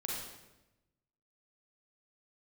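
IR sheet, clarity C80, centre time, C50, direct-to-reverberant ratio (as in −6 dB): 2.5 dB, 72 ms, −0.5 dB, −3.5 dB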